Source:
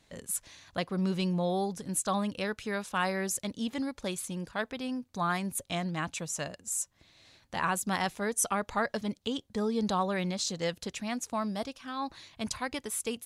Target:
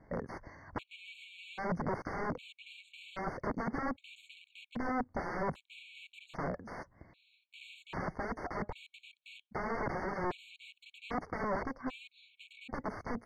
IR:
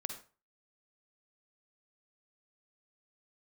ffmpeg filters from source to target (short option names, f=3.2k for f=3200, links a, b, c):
-af "aeval=exprs='(mod(53.1*val(0)+1,2)-1)/53.1':c=same,lowpass=1.3k,afftfilt=real='re*gt(sin(2*PI*0.63*pts/sr)*(1-2*mod(floor(b*sr/1024/2200),2)),0)':imag='im*gt(sin(2*PI*0.63*pts/sr)*(1-2*mod(floor(b*sr/1024/2200),2)),0)':win_size=1024:overlap=0.75,volume=8.5dB"